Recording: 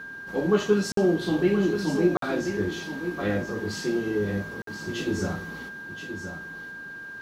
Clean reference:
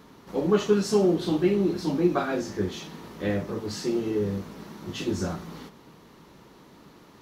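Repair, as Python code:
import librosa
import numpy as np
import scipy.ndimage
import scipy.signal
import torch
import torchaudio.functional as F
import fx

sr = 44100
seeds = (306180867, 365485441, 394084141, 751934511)

y = fx.fix_declick_ar(x, sr, threshold=6.5)
y = fx.notch(y, sr, hz=1600.0, q=30.0)
y = fx.fix_interpolate(y, sr, at_s=(0.92, 2.17, 4.62), length_ms=53.0)
y = fx.fix_echo_inverse(y, sr, delay_ms=1026, level_db=-9.0)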